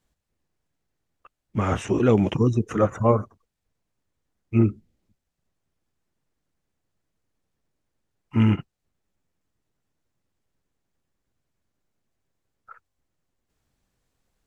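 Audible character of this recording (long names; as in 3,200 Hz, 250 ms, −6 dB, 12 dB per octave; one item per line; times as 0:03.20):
background noise floor −80 dBFS
spectral slope −7.5 dB per octave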